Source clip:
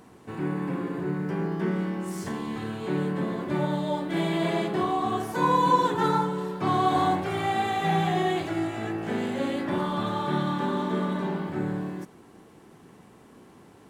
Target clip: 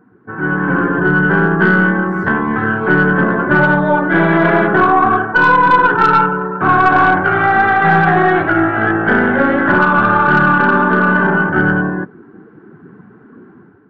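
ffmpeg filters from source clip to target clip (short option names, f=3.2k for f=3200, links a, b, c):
-af "afftdn=nr=16:nf=-43,lowpass=f=1.5k:t=q:w=9.4,dynaudnorm=f=410:g=3:m=10dB,aeval=exprs='0.891*(cos(1*acos(clip(val(0)/0.891,-1,1)))-cos(1*PI/2))+0.0562*(cos(4*acos(clip(val(0)/0.891,-1,1)))-cos(4*PI/2))+0.0708*(cos(5*acos(clip(val(0)/0.891,-1,1)))-cos(5*PI/2))+0.0224*(cos(7*acos(clip(val(0)/0.891,-1,1)))-cos(7*PI/2))':c=same,alimiter=level_in=4.5dB:limit=-1dB:release=50:level=0:latency=1,volume=-1dB"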